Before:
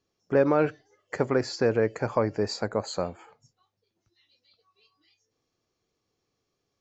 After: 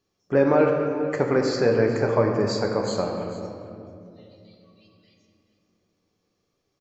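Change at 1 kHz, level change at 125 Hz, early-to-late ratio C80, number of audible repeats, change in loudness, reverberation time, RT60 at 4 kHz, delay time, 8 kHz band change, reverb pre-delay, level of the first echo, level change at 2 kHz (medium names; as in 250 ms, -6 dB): +4.0 dB, +5.0 dB, 4.0 dB, 1, +4.0 dB, 2.6 s, 1.4 s, 442 ms, no reading, 5 ms, -16.0 dB, +4.0 dB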